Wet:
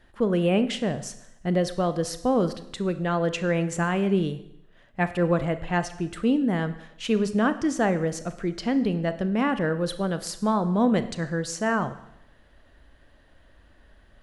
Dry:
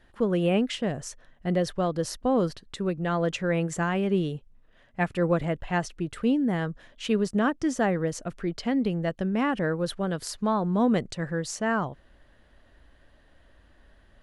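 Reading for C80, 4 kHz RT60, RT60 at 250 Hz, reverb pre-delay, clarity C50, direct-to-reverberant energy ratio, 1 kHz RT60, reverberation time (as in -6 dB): 16.0 dB, 0.80 s, 0.75 s, 30 ms, 13.0 dB, 11.0 dB, 0.80 s, 0.80 s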